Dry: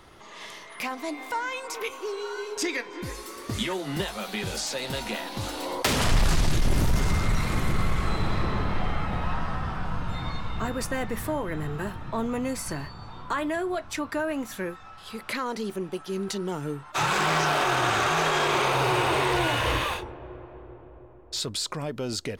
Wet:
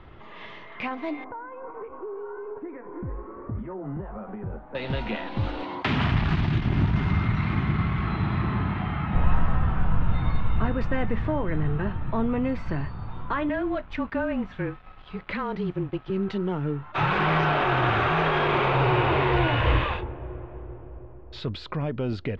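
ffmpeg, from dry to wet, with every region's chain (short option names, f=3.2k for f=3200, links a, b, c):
-filter_complex "[0:a]asettb=1/sr,asplit=3[a][b][c];[a]atrim=end=1.244[d];[b]atrim=start=1.24:end=4.75,asetpts=PTS-STARTPTS,afade=t=in:d=0.004:c=qsin,afade=t=out:st=3.506:d=0.004:c=qsin,acompressor=threshold=-33dB:ratio=6:attack=3.2:release=140:knee=1:detection=peak,lowpass=f=1.3k:w=0.5412,lowpass=f=1.3k:w=1.3066[e];[c]atrim=start=4.746[f];[d][e]acrossfade=d=0.004:c1=hsin:c2=qsin[g];[g][f]acrossfade=d=0.004:c1=qsin:c2=hsin,asettb=1/sr,asplit=3[h][i][j];[h]atrim=end=5.634[k];[i]atrim=start=5.63:end=9.15,asetpts=PTS-STARTPTS,afade=t=in:d=0.004:c=qsin,afade=t=out:st=3.516:d=0.004:c=qsin,highpass=110,equalizer=f=510:t=o:w=0.48:g=-14[l];[j]atrim=start=9.146[m];[k][l]acrossfade=d=0.004:c1=hsin:c2=qsin[n];[n][m]acrossfade=d=0.004:c1=qsin:c2=hsin,asettb=1/sr,asplit=3[o][p][q];[o]atrim=end=13.494[r];[p]atrim=start=13.49:end=16.1,asetpts=PTS-STARTPTS,afade=t=in:d=0.004:c=qsin,afade=t=out:st=2.606:d=0.004:c=qsin,afreqshift=-28,aeval=exprs='sgn(val(0))*max(abs(val(0))-0.00376,0)':c=same[s];[q]atrim=start=16.096[t];[r][s]acrossfade=d=0.004:c1=hsin:c2=qsin[u];[u][t]acrossfade=d=0.004:c1=qsin:c2=hsin,lowpass=f=3.1k:w=0.5412,lowpass=f=3.1k:w=1.3066,lowshelf=f=190:g=10.5"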